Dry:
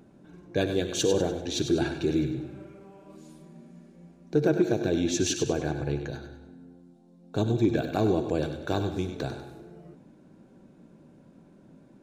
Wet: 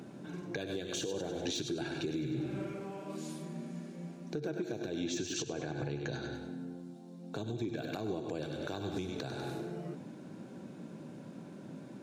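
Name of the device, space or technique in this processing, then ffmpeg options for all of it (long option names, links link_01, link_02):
broadcast voice chain: -filter_complex "[0:a]asettb=1/sr,asplit=3[link_01][link_02][link_03];[link_01]atrim=end=5.004[link_04];[link_02]atrim=start=5:end=6.35,asetpts=PTS-STARTPTS,afade=type=in:duration=0.004:curve=qsin,afade=type=out:start_time=1.346:duration=0.004:curve=qsin,lowpass=frequency=8400:width=0.5412,lowpass=frequency=8400:width=1.3066[link_05];[link_03]atrim=start=6.346[link_06];[link_04][link_05]acrossfade=duration=0.004:curve1=hsin:curve2=qsin[link_07];[link_07][link_06]acrossfade=duration=0.004:curve1=qsin:curve2=hsin,highpass=frequency=100:width=0.5412,highpass=frequency=100:width=1.3066,deesser=0.75,acompressor=threshold=-38dB:ratio=4,equalizer=frequency=4500:width_type=o:width=2.9:gain=4,alimiter=level_in=9dB:limit=-24dB:level=0:latency=1:release=256,volume=-9dB,volume=6.5dB"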